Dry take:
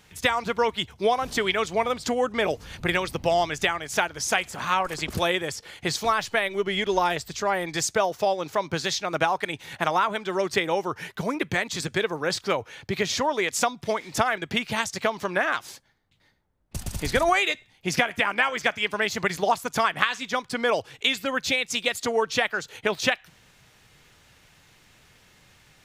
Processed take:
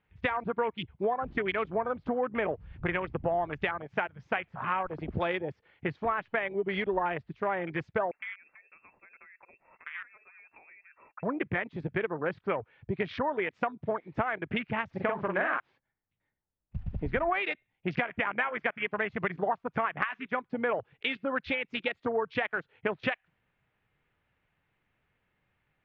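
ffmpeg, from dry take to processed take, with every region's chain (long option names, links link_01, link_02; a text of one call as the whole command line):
ffmpeg -i in.wav -filter_complex "[0:a]asettb=1/sr,asplit=3[link_01][link_02][link_03];[link_01]atrim=end=8.114[link_04];[link_02]atrim=start=8.11:end=11.23,asetpts=PTS-STARTPTS,afade=type=in:duration=0.004:curve=qsin,afade=type=out:start_time=3.116:duration=0.004:curve=qsin,agate=range=-33dB:threshold=-44dB:ratio=3:release=100:detection=peak,lowpass=frequency=2400:width_type=q:width=0.5098,lowpass=frequency=2400:width_type=q:width=0.6013,lowpass=frequency=2400:width_type=q:width=0.9,lowpass=frequency=2400:width_type=q:width=2.563,afreqshift=-2800,acompressor=threshold=-33dB:ratio=6:attack=3.2:release=140:knee=1:detection=peak[link_05];[link_03]atrim=start=11.226[link_06];[link_04][link_05]acrossfade=duration=0.004:curve1=hsin:curve2=qsin[link_07];[link_07][link_06]acrossfade=duration=0.004:curve1=qsin:curve2=hsin,asettb=1/sr,asplit=3[link_08][link_09][link_10];[link_08]atrim=end=14.894[link_11];[link_09]atrim=start=14.89:end=15.6,asetpts=PTS-STARTPTS,afade=type=in:duration=0.004:curve=qsin,afade=type=out:start_time=0.706:duration=0.004:curve=qsin,aeval=exprs='val(0)+0.5*0.0158*sgn(val(0))':channel_layout=same,asplit=2[link_12][link_13];[link_13]adelay=43,volume=-3dB[link_14];[link_12][link_14]amix=inputs=2:normalize=0,atrim=end_sample=31311[link_15];[link_10]atrim=start=15.596[link_16];[link_11][link_15]acrossfade=duration=0.004:curve1=hsin:curve2=qsin[link_17];[link_17][link_16]acrossfade=duration=0.004:curve1=qsin:curve2=hsin,afwtdn=0.0316,lowpass=frequency=2600:width=0.5412,lowpass=frequency=2600:width=1.3066,acompressor=threshold=-26dB:ratio=2.5,volume=-1.5dB" out.wav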